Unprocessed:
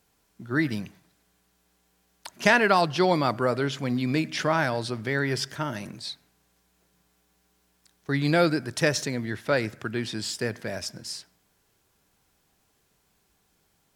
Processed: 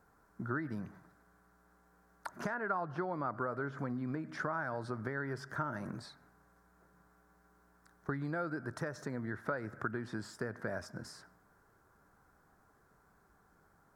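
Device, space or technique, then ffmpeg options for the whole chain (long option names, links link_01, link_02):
serial compression, leveller first: -filter_complex "[0:a]asettb=1/sr,asplit=3[link_01][link_02][link_03];[link_01]atrim=end=2.544[link_04];[link_02]atrim=start=2.54:end=4.3,asetpts=PTS-STARTPTS,afade=type=in:duration=0.004:curve=qsin,afade=type=out:start_time=1.756:duration=0.004:curve=qsin,acrossover=split=2900[link_05][link_06];[link_06]acompressor=threshold=-43dB:ratio=4:attack=1:release=60[link_07];[link_05][link_07]amix=inputs=2:normalize=0[link_08];[link_03]atrim=start=4.296[link_09];[link_04][link_08]acrossfade=duration=0.004:curve1=hsin:curve2=qsin[link_10];[link_10][link_09]acrossfade=duration=0.004:curve1=qsin:curve2=hsin,acompressor=threshold=-25dB:ratio=2,acompressor=threshold=-38dB:ratio=6,highshelf=frequency=2000:width_type=q:width=3:gain=-12,volume=2dB"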